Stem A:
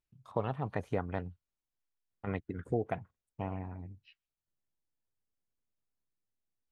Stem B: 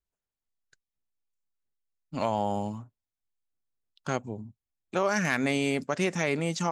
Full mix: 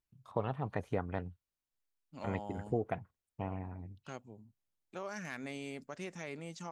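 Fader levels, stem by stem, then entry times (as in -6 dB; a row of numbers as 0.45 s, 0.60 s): -1.5 dB, -16.0 dB; 0.00 s, 0.00 s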